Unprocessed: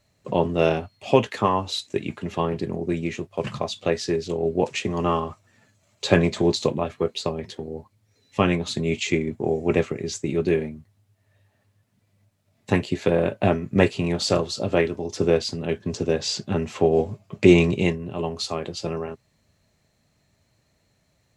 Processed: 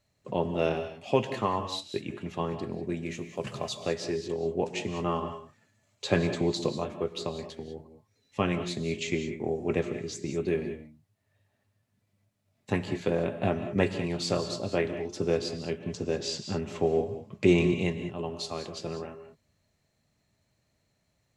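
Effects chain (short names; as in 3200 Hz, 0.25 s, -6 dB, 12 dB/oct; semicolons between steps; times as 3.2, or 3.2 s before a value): 3.04–3.83 high shelf 8800 Hz -> 5800 Hz +11.5 dB; non-linear reverb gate 0.22 s rising, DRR 9 dB; gain -7.5 dB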